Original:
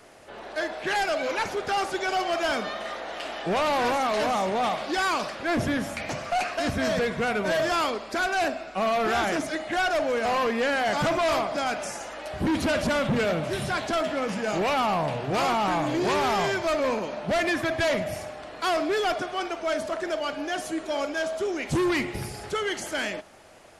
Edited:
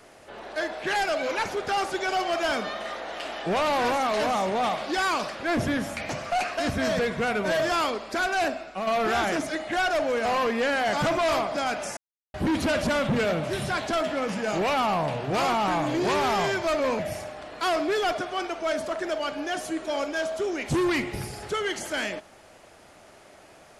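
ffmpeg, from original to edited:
-filter_complex "[0:a]asplit=5[s0][s1][s2][s3][s4];[s0]atrim=end=8.87,asetpts=PTS-STARTPTS,afade=t=out:st=8.53:d=0.34:silence=0.501187[s5];[s1]atrim=start=8.87:end=11.97,asetpts=PTS-STARTPTS,afade=t=in:d=0.004:c=hsin:silence=0.501187,afade=t=out:st=3.096:d=0.004:c=hsin[s6];[s2]atrim=start=11.97:end=12.34,asetpts=PTS-STARTPTS,volume=0[s7];[s3]atrim=start=12.34:end=16.992,asetpts=PTS-STARTPTS,afade=t=in:d=0.004:c=hsin[s8];[s4]atrim=start=17.998[s9];[s5][s6][s7][s8]concat=n=4:v=0:a=1[s10];[s10][s9]acrossfade=d=0.004:c1=hsin:c2=hsin"

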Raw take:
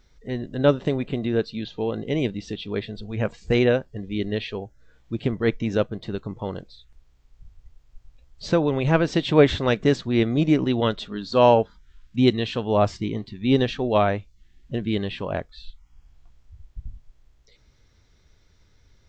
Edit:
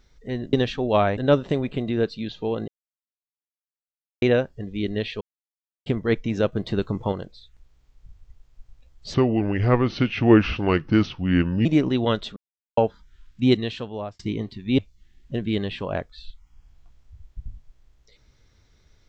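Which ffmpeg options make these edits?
-filter_complex "[0:a]asplit=15[s0][s1][s2][s3][s4][s5][s6][s7][s8][s9][s10][s11][s12][s13][s14];[s0]atrim=end=0.532[s15];[s1]atrim=start=13.538:end=14.182[s16];[s2]atrim=start=0.528:end=2.04,asetpts=PTS-STARTPTS,afade=t=out:st=1.508:d=0.004:c=hsin[s17];[s3]atrim=start=2.04:end=3.58,asetpts=PTS-STARTPTS,volume=0[s18];[s4]atrim=start=3.58:end=4.57,asetpts=PTS-STARTPTS,afade=t=in:d=0.004:c=hsin,afade=t=out:st=0.986:d=0.004:c=hsin[s19];[s5]atrim=start=4.57:end=5.22,asetpts=PTS-STARTPTS,volume=0[s20];[s6]atrim=start=5.22:end=5.882,asetpts=PTS-STARTPTS,afade=t=in:d=0.004:c=hsin[s21];[s7]atrim=start=5.878:end=6.482,asetpts=PTS-STARTPTS,volume=1.88[s22];[s8]atrim=start=6.478:end=8.504[s23];[s9]atrim=start=8.5:end=10.41,asetpts=PTS-STARTPTS,asetrate=33516,aresample=44100,atrim=end_sample=110830,asetpts=PTS-STARTPTS[s24];[s10]atrim=start=10.406:end=11.12,asetpts=PTS-STARTPTS,afade=t=out:st=0.71:d=0.004:c=hsin[s25];[s11]atrim=start=11.12:end=11.53,asetpts=PTS-STARTPTS,volume=0[s26];[s12]atrim=start=11.53:end=12.95,asetpts=PTS-STARTPTS,afade=t=in:d=0.004:c=hsin,afade=t=out:st=0.72:d=0.7[s27];[s13]atrim=start=12.95:end=13.542,asetpts=PTS-STARTPTS,afade=t=in:d=0.004:c=hsin[s28];[s14]atrim=start=14.178[s29];[s15][s16]acrossfade=d=0.004:c1=hsin:c2=hsin[s30];[s17][s18][s19][s20][s21]concat=n=5:v=0:a=1[s31];[s30][s31]acrossfade=d=0.004:c1=hsin:c2=hsin[s32];[s32][s22]acrossfade=d=0.004:c1=hsin:c2=hsin[s33];[s33][s23]acrossfade=d=0.004:c1=hsin:c2=hsin[s34];[s34][s24]acrossfade=d=0.004:c1=hsin:c2=hsin[s35];[s25][s26][s27][s28]concat=n=4:v=0:a=1[s36];[s35][s36]acrossfade=d=0.004:c1=hsin:c2=hsin[s37];[s37][s29]acrossfade=d=0.004:c1=hsin:c2=hsin"

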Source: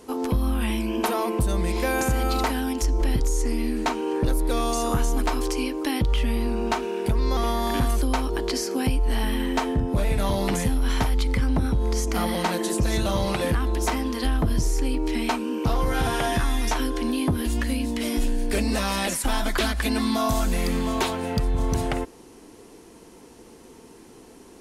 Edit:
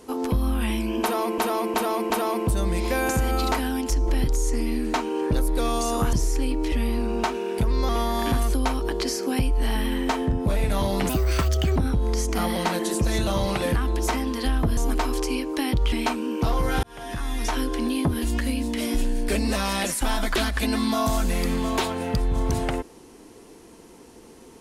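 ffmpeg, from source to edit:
-filter_complex "[0:a]asplit=11[s0][s1][s2][s3][s4][s5][s6][s7][s8][s9][s10];[s0]atrim=end=1.382[s11];[s1]atrim=start=1.018:end=1.382[s12];[s2]atrim=start=1.018:end=1.382[s13];[s3]atrim=start=1.018:end=5.052[s14];[s4]atrim=start=14.558:end=15.152[s15];[s5]atrim=start=6.198:end=10.574[s16];[s6]atrim=start=10.57:end=11.55,asetpts=PTS-STARTPTS,asetrate=64386,aresample=44100,atrim=end_sample=29601,asetpts=PTS-STARTPTS[s17];[s7]atrim=start=11.546:end=14.562[s18];[s8]atrim=start=5.048:end=6.202[s19];[s9]atrim=start=15.148:end=16.06,asetpts=PTS-STARTPTS,afade=t=out:st=0.908:d=0.004:c=hsin[s20];[s10]atrim=start=16.06,asetpts=PTS-STARTPTS,afade=t=in:d=0.77[s21];[s11][s12]acrossfade=d=0.004:c1=hsin:c2=hsin[s22];[s22][s13]acrossfade=d=0.004:c1=hsin:c2=hsin[s23];[s23][s14]acrossfade=d=0.004:c1=hsin:c2=hsin[s24];[s24][s15]acrossfade=d=0.004:c1=hsin:c2=hsin[s25];[s25][s16]acrossfade=d=0.004:c1=hsin:c2=hsin[s26];[s26][s17]acrossfade=d=0.004:c1=hsin:c2=hsin[s27];[s27][s18]acrossfade=d=0.004:c1=hsin:c2=hsin[s28];[s28][s19]acrossfade=d=0.004:c1=hsin:c2=hsin[s29];[s20][s21]concat=n=2:v=0:a=1[s30];[s29][s30]acrossfade=d=0.004:c1=hsin:c2=hsin"

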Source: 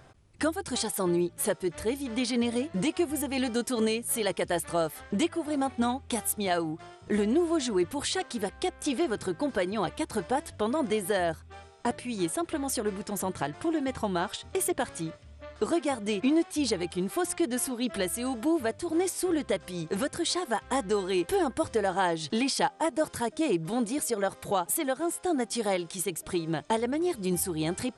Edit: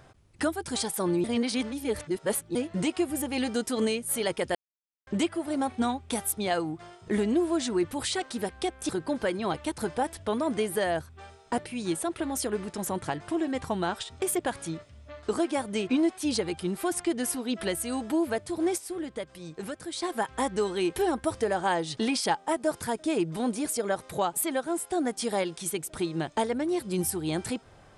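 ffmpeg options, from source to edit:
-filter_complex "[0:a]asplit=8[s0][s1][s2][s3][s4][s5][s6][s7];[s0]atrim=end=1.242[s8];[s1]atrim=start=1.238:end=2.552,asetpts=PTS-STARTPTS,areverse[s9];[s2]atrim=start=2.548:end=4.55,asetpts=PTS-STARTPTS,afade=t=out:st=1.998:d=0.004:c=hsin[s10];[s3]atrim=start=4.55:end=5.07,asetpts=PTS-STARTPTS,volume=0[s11];[s4]atrim=start=5.07:end=8.892,asetpts=PTS-STARTPTS,afade=t=in:d=0.004:c=hsin[s12];[s5]atrim=start=9.218:end=19.112[s13];[s6]atrim=start=19.108:end=20.352,asetpts=PTS-STARTPTS,volume=0.447[s14];[s7]atrim=start=20.348[s15];[s8][s9]acrossfade=d=0.004:c1=hsin:c2=hsin[s16];[s10][s11][s12]concat=n=3:v=0:a=1[s17];[s16][s17]acrossfade=d=0.004:c1=hsin:c2=hsin[s18];[s18][s13]acrossfade=d=0.004:c1=hsin:c2=hsin[s19];[s19][s14]acrossfade=d=0.004:c1=hsin:c2=hsin[s20];[s20][s15]acrossfade=d=0.004:c1=hsin:c2=hsin"

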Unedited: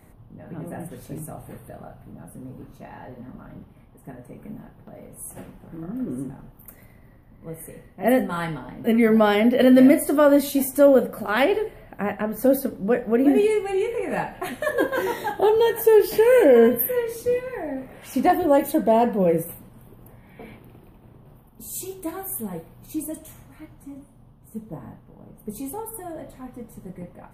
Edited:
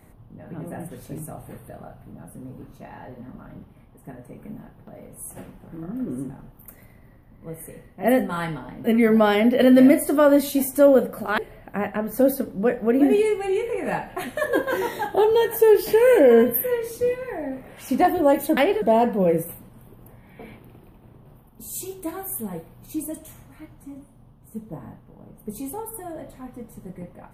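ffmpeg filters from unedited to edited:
-filter_complex "[0:a]asplit=4[s0][s1][s2][s3];[s0]atrim=end=11.382[s4];[s1]atrim=start=11.628:end=18.822[s5];[s2]atrim=start=11.378:end=11.632[s6];[s3]atrim=start=18.818[s7];[s4][s5]acrossfade=d=0.004:c1=hsin:c2=hsin[s8];[s8][s6]acrossfade=d=0.004:c1=hsin:c2=hsin[s9];[s9][s7]acrossfade=d=0.004:c1=hsin:c2=hsin"

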